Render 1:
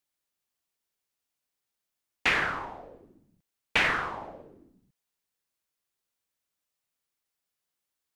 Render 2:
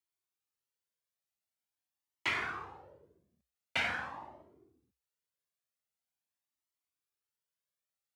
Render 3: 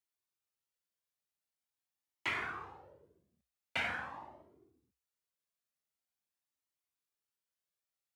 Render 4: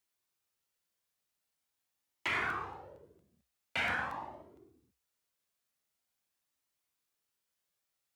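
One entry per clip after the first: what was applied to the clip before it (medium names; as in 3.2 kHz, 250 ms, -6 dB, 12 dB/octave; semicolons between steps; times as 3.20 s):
frequency shift +61 Hz; Shepard-style flanger rising 0.45 Hz; trim -4 dB
dynamic bell 5 kHz, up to -5 dB, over -53 dBFS, Q 1.1; trim -2 dB
peak limiter -30 dBFS, peak gain reduction 7.5 dB; crackling interface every 0.23 s, samples 64, repeat, from 0.66 s; trim +6.5 dB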